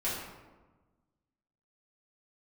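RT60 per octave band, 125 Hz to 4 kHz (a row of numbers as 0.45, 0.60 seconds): 1.7, 1.6, 1.3, 1.2, 0.90, 0.65 seconds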